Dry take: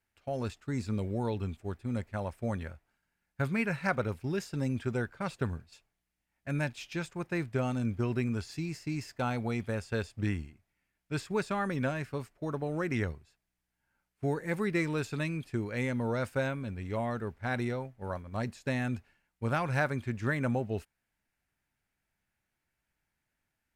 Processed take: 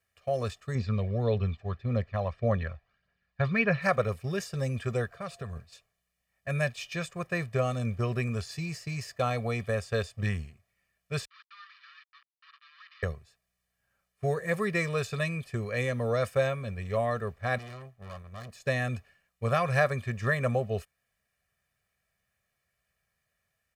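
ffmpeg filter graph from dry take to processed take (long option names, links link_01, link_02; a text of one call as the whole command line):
ffmpeg -i in.wav -filter_complex "[0:a]asettb=1/sr,asplit=3[link_01][link_02][link_03];[link_01]atrim=end=0.754[link_04];[link_02]atrim=start=0.75:end=3.82,asetpts=PTS-STARTPTS,afade=type=in:duration=0.004:curve=qsin,afade=type=out:start_time=3.066:duration=0.004:curve=qsin,lowpass=frequency=4700:width=0.5412,lowpass=frequency=4700:width=1.3066,aphaser=in_gain=1:out_gain=1:delay=1.3:decay=0.39:speed=1.7:type=triangular[link_05];[link_03]atrim=start=3.816[link_06];[link_04][link_05]acrossfade=duration=0.004:curve1=hsin:curve2=qsin[link_07];[link_07][link_06]acrossfade=duration=0.004:curve1=qsin:curve2=hsin,asettb=1/sr,asplit=3[link_08][link_09][link_10];[link_08]atrim=end=5.114[link_11];[link_09]atrim=start=5.11:end=5.56,asetpts=PTS-STARTPTS,afade=type=in:duration=0.004:curve=qsin,afade=type=out:start_time=0.446:duration=0.004:curve=qsin,acompressor=threshold=-42dB:ratio=2:attack=3.2:release=140:knee=1:detection=peak,aeval=exprs='val(0)+0.000708*sin(2*PI*690*n/s)':channel_layout=same[link_12];[link_10]atrim=start=5.556[link_13];[link_11][link_12]acrossfade=duration=0.004:curve1=hsin:curve2=qsin[link_14];[link_14][link_13]acrossfade=duration=0.004:curve1=qsin:curve2=hsin,asettb=1/sr,asplit=3[link_15][link_16][link_17];[link_15]atrim=end=11.254[link_18];[link_16]atrim=start=11.25:end=13.03,asetpts=PTS-STARTPTS,afade=type=in:duration=0.004:curve=qsin,afade=type=out:start_time=1.776:duration=0.004:curve=qsin,asoftclip=type=hard:threshold=-33dB,acrusher=bits=4:mix=0:aa=0.5,asuperpass=centerf=2400:order=12:qfactor=0.66[link_19];[link_17]atrim=start=13.026[link_20];[link_18][link_19]acrossfade=duration=0.004:curve1=hsin:curve2=qsin[link_21];[link_21][link_20]acrossfade=duration=0.004:curve1=qsin:curve2=hsin,asettb=1/sr,asplit=3[link_22][link_23][link_24];[link_22]atrim=end=17.584[link_25];[link_23]atrim=start=17.58:end=18.6,asetpts=PTS-STARTPTS,afade=type=in:duration=0.004:curve=qsin,afade=type=out:start_time=1.016:duration=0.004:curve=qsin,equalizer=frequency=500:width=4.6:gain=-12,aeval=exprs='(tanh(141*val(0)+0.75)-tanh(0.75))/141':channel_layout=same[link_26];[link_24]atrim=start=18.596[link_27];[link_25][link_26]acrossfade=duration=0.004:curve1=hsin:curve2=qsin[link_28];[link_28][link_27]acrossfade=duration=0.004:curve1=qsin:curve2=hsin,highpass=42,lowshelf=frequency=140:gain=-4.5,aecho=1:1:1.7:0.91,volume=2dB" out.wav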